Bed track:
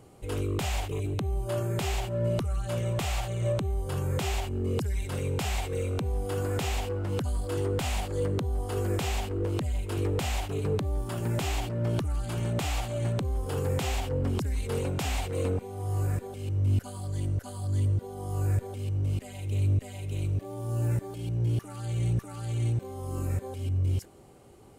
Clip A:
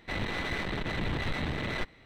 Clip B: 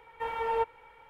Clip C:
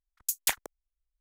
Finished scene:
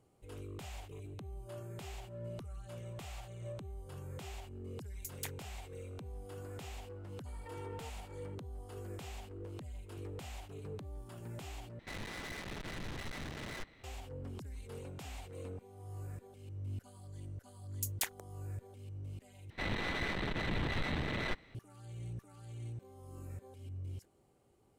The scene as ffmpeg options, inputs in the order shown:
-filter_complex "[3:a]asplit=2[a][b];[1:a]asplit=2[c][d];[0:a]volume=-16.5dB[e];[2:a]acompressor=threshold=-43dB:ratio=6:attack=3.2:release=140:knee=1:detection=peak[f];[c]aeval=exprs='(tanh(112*val(0)+0.65)-tanh(0.65))/112':c=same[g];[e]asplit=3[h][i][j];[h]atrim=end=11.794[k];[g]atrim=end=2.05,asetpts=PTS-STARTPTS,volume=-1dB[l];[i]atrim=start=13.836:end=19.504[m];[d]atrim=end=2.05,asetpts=PTS-STARTPTS,volume=-3.5dB[n];[j]atrim=start=21.546[o];[a]atrim=end=1.2,asetpts=PTS-STARTPTS,volume=-16dB,afade=t=in:d=0.004:c=hsin,afade=t=out:st=1.196:d=0.004:c=hsin,adelay=4760[p];[f]atrim=end=1.09,asetpts=PTS-STARTPTS,volume=-6dB,afade=t=in:d=0.004:c=hsin,afade=t=out:st=1.086:d=0.004:c=hsin,adelay=7260[q];[b]atrim=end=1.2,asetpts=PTS-STARTPTS,volume=-9dB,afade=t=in:d=0.004:c=hsin,afade=t=out:st=1.196:d=0.004:c=hsin,adelay=17540[r];[k][l]acrossfade=d=0.004:c1=hsin:c2=hsin[s];[s][m]acrossfade=d=0.004:c1=hsin:c2=hsin[t];[t][n]acrossfade=d=0.004:c1=hsin:c2=hsin[u];[u][o]acrossfade=d=0.004:c1=hsin:c2=hsin[v];[v][p][q][r]amix=inputs=4:normalize=0"

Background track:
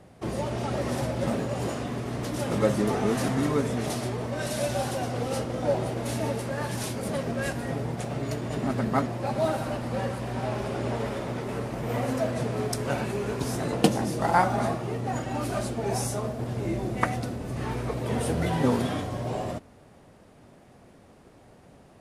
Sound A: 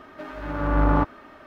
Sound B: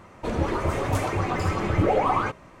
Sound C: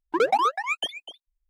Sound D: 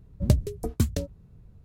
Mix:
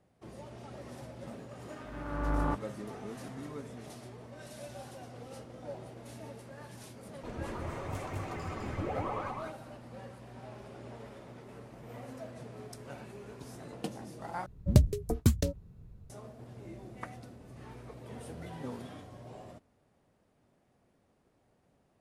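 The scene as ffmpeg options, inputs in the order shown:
-filter_complex "[0:a]volume=-17.5dB[a];[2:a]aecho=1:1:206:0.708[b];[a]asplit=2[c][d];[c]atrim=end=14.464[e];[4:a]atrim=end=1.64,asetpts=PTS-STARTPTS,volume=-1dB[f];[d]atrim=start=16.096[g];[1:a]atrim=end=1.46,asetpts=PTS-STARTPTS,volume=-11dB,afade=t=in:d=0.004:c=hsin,afade=t=out:st=1.456:d=0.004:c=hsin,adelay=1510[h];[b]atrim=end=2.6,asetpts=PTS-STARTPTS,volume=-15.5dB,afade=t=in:d=0.004:c=hsin,afade=t=out:st=2.596:d=0.004:c=hsin,adelay=7000[i];[e][f]acrossfade=d=0.004:c1=hsin:c2=hsin[j];[j][g]acrossfade=d=0.004:c1=hsin:c2=hsin[k];[k][h][i]amix=inputs=3:normalize=0"

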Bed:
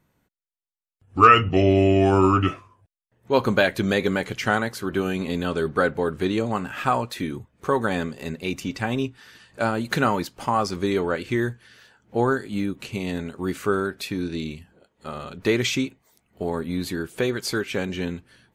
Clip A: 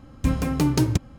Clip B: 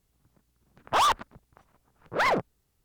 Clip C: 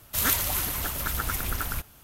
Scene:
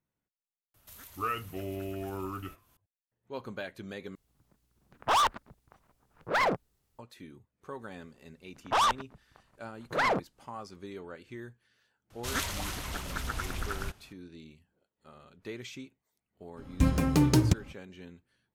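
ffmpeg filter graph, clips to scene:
-filter_complex "[3:a]asplit=2[a][b];[2:a]asplit=2[c][d];[0:a]volume=-20dB[e];[a]acompressor=threshold=-51dB:ratio=2:attack=95:release=127:knee=1:detection=rms[f];[d]lowpass=12k[g];[b]lowpass=6.9k[h];[e]asplit=2[i][j];[i]atrim=end=4.154[k];[c]atrim=end=2.84,asetpts=PTS-STARTPTS,volume=-2.5dB[l];[j]atrim=start=6.986[m];[f]atrim=end=2.03,asetpts=PTS-STARTPTS,volume=-13dB,afade=t=in:d=0.004:c=hsin,afade=t=out:st=2.026:d=0.004:c=hsin,adelay=740[n];[g]atrim=end=2.84,asetpts=PTS-STARTPTS,volume=-3dB,afade=t=in:d=0.004:c=hsin,afade=t=out:st=2.836:d=0.004:c=hsin,adelay=7790[o];[h]atrim=end=2.03,asetpts=PTS-STARTPTS,volume=-4.5dB,afade=t=in:d=0.004:c=hsin,afade=t=out:st=2.026:d=0.004:c=hsin,adelay=12100[p];[1:a]atrim=end=1.18,asetpts=PTS-STARTPTS,volume=-2.5dB,afade=t=in:d=0.02,afade=t=out:st=1.16:d=0.02,adelay=16560[q];[k][l]acrossfade=d=0.004:c1=hsin:c2=hsin[r];[r][m]acrossfade=d=0.004:c1=hsin:c2=hsin[s];[s][n][o][p][q]amix=inputs=5:normalize=0"

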